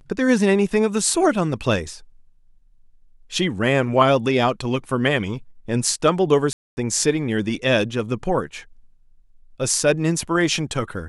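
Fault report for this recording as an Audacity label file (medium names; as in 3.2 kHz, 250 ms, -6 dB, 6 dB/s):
6.530000	6.770000	dropout 240 ms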